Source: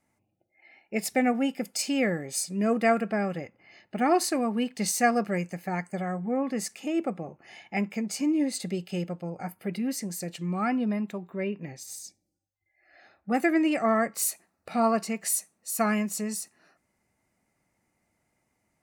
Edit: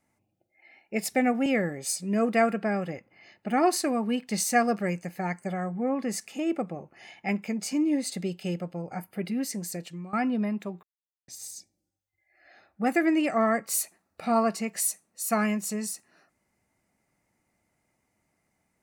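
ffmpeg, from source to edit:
-filter_complex "[0:a]asplit=5[s0][s1][s2][s3][s4];[s0]atrim=end=1.462[s5];[s1]atrim=start=1.938:end=10.61,asetpts=PTS-STARTPTS,afade=t=out:st=8.272:d=0.4:silence=0.141254[s6];[s2]atrim=start=10.61:end=11.31,asetpts=PTS-STARTPTS,afade=t=in:d=0.004:c=hsin:silence=0.141254,afade=t=out:st=0.696:d=0.004:c=hsin[s7];[s3]atrim=start=11.31:end=11.76,asetpts=PTS-STARTPTS,volume=0[s8];[s4]atrim=start=11.76,asetpts=PTS-STARTPTS,afade=t=in:d=0.004:c=hsin[s9];[s6][s7][s8][s9]concat=n=4:v=0:a=1[s10];[s5][s10]acrossfade=d=0.004:c1=hsin:c2=hsin"

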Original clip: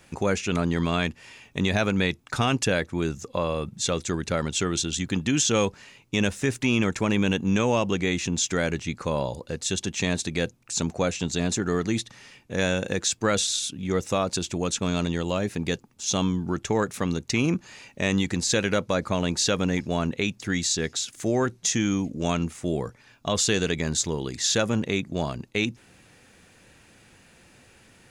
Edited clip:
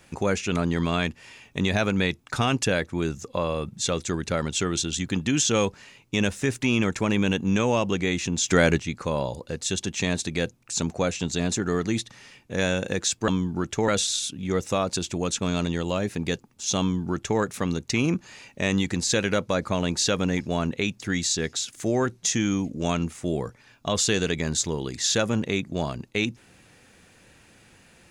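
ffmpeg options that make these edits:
-filter_complex "[0:a]asplit=5[s0][s1][s2][s3][s4];[s0]atrim=end=8.482[s5];[s1]atrim=start=8.478:end=8.782,asetpts=PTS-STARTPTS,volume=2.11[s6];[s2]atrim=start=8.778:end=13.282[s7];[s3]atrim=start=16.198:end=16.802[s8];[s4]atrim=start=13.278[s9];[s5][s6]acrossfade=d=0.004:c1=hsin:c2=hsin[s10];[s10][s7]acrossfade=d=0.004:c1=hsin:c2=hsin[s11];[s11][s8]acrossfade=d=0.004:c1=hsin:c2=hsin[s12];[s12][s9]acrossfade=d=0.004:c1=hsin:c2=hsin"

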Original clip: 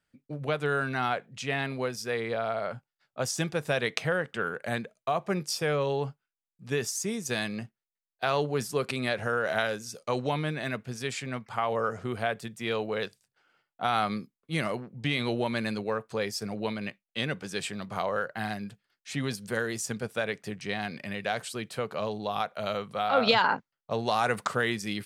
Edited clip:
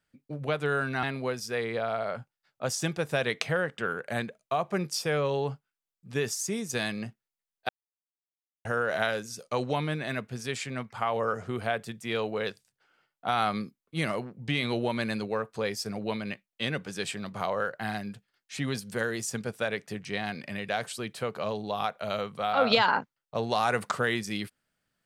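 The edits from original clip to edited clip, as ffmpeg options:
-filter_complex "[0:a]asplit=4[s0][s1][s2][s3];[s0]atrim=end=1.032[s4];[s1]atrim=start=1.588:end=8.25,asetpts=PTS-STARTPTS,afade=t=out:st=6.658:d=0.004:c=hsin[s5];[s2]atrim=start=8.25:end=9.21,asetpts=PTS-STARTPTS,volume=0[s6];[s3]atrim=start=9.21,asetpts=PTS-STARTPTS,afade=t=in:d=0.004:c=hsin[s7];[s5][s6][s7]concat=n=3:v=0:a=1[s8];[s4][s8]acrossfade=d=0.004:c1=hsin:c2=hsin"

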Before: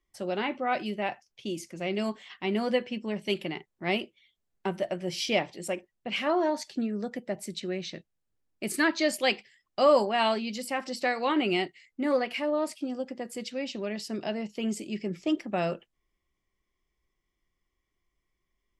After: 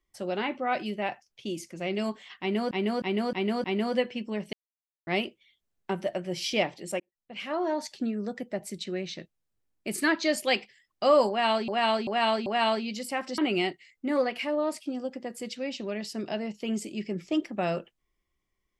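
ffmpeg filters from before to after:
-filter_complex "[0:a]asplit=12[s0][s1][s2][s3][s4][s5][s6][s7][s8][s9][s10][s11];[s0]atrim=end=2.712[s12];[s1]atrim=start=2.398:end=2.712[s13];[s2]atrim=start=2.398:end=2.712[s14];[s3]atrim=start=2.398:end=2.712[s15];[s4]atrim=start=2.398:end=3.29,asetpts=PTS-STARTPTS,afade=t=out:st=0.888:d=0.004:c=hsin[s16];[s5]atrim=start=3.29:end=3.83,asetpts=PTS-STARTPTS,volume=0[s17];[s6]atrim=start=3.83:end=5.76,asetpts=PTS-STARTPTS,afade=t=in:d=0.004:c=hsin,afade=t=out:st=1.926:d=0.004:c=hsin[s18];[s7]atrim=start=5.76:end=10.442,asetpts=PTS-STARTPTS,afade=t=in:d=0.9[s19];[s8]atrim=start=10.048:end=10.442[s20];[s9]atrim=start=10.048:end=10.442[s21];[s10]atrim=start=10.048:end=10.972[s22];[s11]atrim=start=11.328[s23];[s12][s13]acrossfade=d=0.004:c1=hsin:c2=hsin[s24];[s24][s14]acrossfade=d=0.004:c1=hsin:c2=hsin[s25];[s25][s15]acrossfade=d=0.004:c1=hsin:c2=hsin[s26];[s16][s17][s18][s19]concat=n=4:v=0:a=1[s27];[s26][s27]acrossfade=d=0.004:c1=hsin:c2=hsin[s28];[s28][s20]acrossfade=d=0.004:c1=hsin:c2=hsin[s29];[s29][s21]acrossfade=d=0.004:c1=hsin:c2=hsin[s30];[s30][s22]acrossfade=d=0.004:c1=hsin:c2=hsin[s31];[s31][s23]acrossfade=d=0.004:c1=hsin:c2=hsin"

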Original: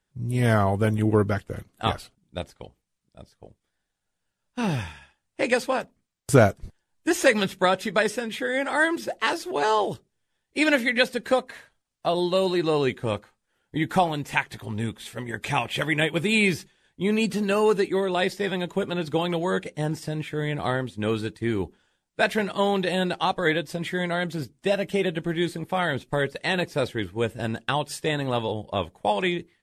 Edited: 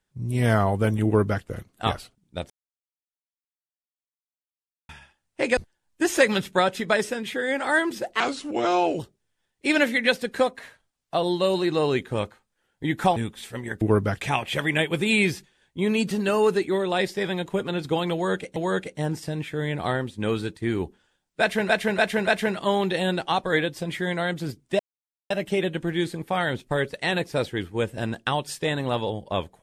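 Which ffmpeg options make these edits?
-filter_complex "[0:a]asplit=14[s0][s1][s2][s3][s4][s5][s6][s7][s8][s9][s10][s11][s12][s13];[s0]atrim=end=2.5,asetpts=PTS-STARTPTS,afade=t=out:st=2.496:d=0.004:c=hsin[s14];[s1]atrim=start=2.5:end=4.89,asetpts=PTS-STARTPTS,volume=0[s15];[s2]atrim=start=4.89:end=5.572,asetpts=PTS-STARTPTS,afade=t=in:d=0.004:c=hsin[s16];[s3]atrim=start=6.628:end=9.264[s17];[s4]atrim=start=9.26:end=9.91,asetpts=PTS-STARTPTS,asetrate=36162,aresample=44100,atrim=end_sample=34957,asetpts=PTS-STARTPTS[s18];[s5]atrim=start=9.906:end=14.082[s19];[s6]atrim=start=14.788:end=15.442[s20];[s7]atrim=start=1.048:end=1.452[s21];[s8]atrim=start=15.438:end=19.792[s22];[s9]atrim=start=19.358:end=22.492[s23];[s10]atrim=start=22.198:end=22.492[s24];[s11]atrim=start=22.198:end=22.492[s25];[s12]atrim=start=22.198:end=24.72,asetpts=PTS-STARTPTS,afade=t=out:st=2.518:d=0.004:c=hsin,apad=pad_dur=0.51[s26];[s13]atrim=start=24.72,asetpts=PTS-STARTPTS,afade=t=in:d=0.004:c=hsin[s27];[s14][s15][s16]concat=n=3:v=0:a=1[s28];[s28][s17]acrossfade=d=0.004:c1=hsin:c2=hsin[s29];[s29][s18]acrossfade=d=0.004:c1=hsin:c2=hsin[s30];[s30][s19]acrossfade=d=0.004:c1=hsin:c2=hsin[s31];[s31][s20]acrossfade=d=0.004:c1=hsin:c2=hsin[s32];[s32][s21]acrossfade=d=0.004:c1=hsin:c2=hsin[s33];[s33][s22]acrossfade=d=0.004:c1=hsin:c2=hsin[s34];[s34][s23]acrossfade=d=0.004:c1=hsin:c2=hsin[s35];[s35][s24]acrossfade=d=0.004:c1=hsin:c2=hsin[s36];[s36][s25]acrossfade=d=0.004:c1=hsin:c2=hsin[s37];[s26][s27]concat=n=2:v=0:a=1[s38];[s37][s38]acrossfade=d=0.004:c1=hsin:c2=hsin"

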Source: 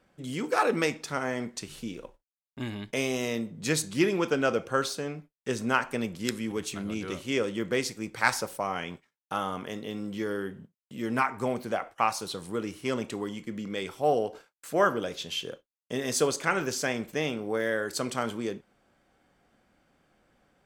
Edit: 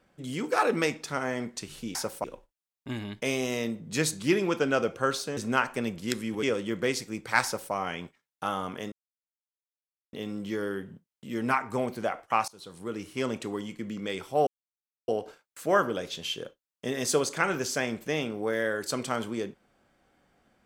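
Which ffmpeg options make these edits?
-filter_complex "[0:a]asplit=8[s0][s1][s2][s3][s4][s5][s6][s7];[s0]atrim=end=1.952[s8];[s1]atrim=start=8.328:end=8.622[s9];[s2]atrim=start=1.948:end=5.082[s10];[s3]atrim=start=5.538:end=6.602[s11];[s4]atrim=start=7.318:end=9.81,asetpts=PTS-STARTPTS,afade=t=out:st=2.488:d=0.004:c=hsin,apad=pad_dur=1.21[s12];[s5]atrim=start=9.81:end=12.16,asetpts=PTS-STARTPTS,afade=t=in:d=0.004:c=hsin,afade=t=out:st=2.346:d=0.004:c=hsin:silence=0.0630957[s13];[s6]atrim=start=12.16:end=14.15,asetpts=PTS-STARTPTS,afade=t=in:d=0.89:c=qsin:silence=0.0630957,afade=t=out:st=1.986:d=0.004:c=hsin,apad=pad_dur=0.61[s14];[s7]atrim=start=14.15,asetpts=PTS-STARTPTS,afade=t=in:d=0.004:c=hsin[s15];[s8][s9]acrossfade=d=0.004:c1=hsin:c2=hsin[s16];[s16][s10]acrossfade=d=0.004:c1=hsin:c2=hsin[s17];[s17][s11]acrossfade=d=0.004:c1=hsin:c2=hsin[s18];[s12][s13][s14][s15]concat=n=4:v=0:a=1[s19];[s18][s19]acrossfade=d=0.004:c1=hsin:c2=hsin"

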